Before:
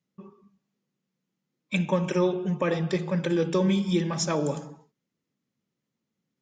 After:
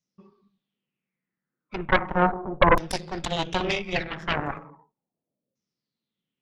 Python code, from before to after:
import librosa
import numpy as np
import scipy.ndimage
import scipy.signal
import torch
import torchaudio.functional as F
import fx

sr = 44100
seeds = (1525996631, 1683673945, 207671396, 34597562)

y = np.where(x < 0.0, 10.0 ** (-3.0 / 20.0) * x, x)
y = fx.filter_lfo_lowpass(y, sr, shape='saw_down', hz=0.36, low_hz=520.0, high_hz=6100.0, q=5.8)
y = fx.cheby_harmonics(y, sr, harmonics=(3, 6, 7), levels_db=(-13, -10, -18), full_scale_db=-4.5)